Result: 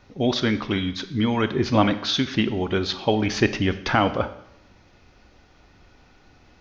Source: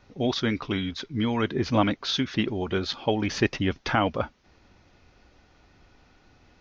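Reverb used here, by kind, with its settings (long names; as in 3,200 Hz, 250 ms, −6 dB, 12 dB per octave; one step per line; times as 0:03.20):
four-comb reverb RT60 0.79 s, combs from 29 ms, DRR 11.5 dB
level +3.5 dB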